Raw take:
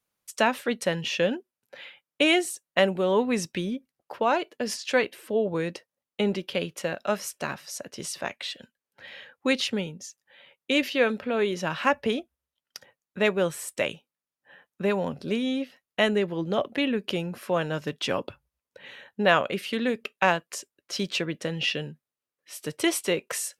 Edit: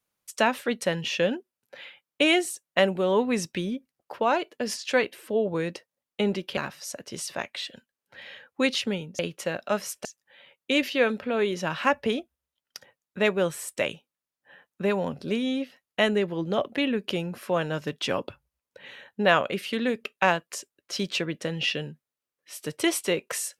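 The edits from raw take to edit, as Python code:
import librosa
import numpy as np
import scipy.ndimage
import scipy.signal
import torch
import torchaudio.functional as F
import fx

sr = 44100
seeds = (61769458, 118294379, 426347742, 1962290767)

y = fx.edit(x, sr, fx.move(start_s=6.57, length_s=0.86, to_s=10.05), tone=tone)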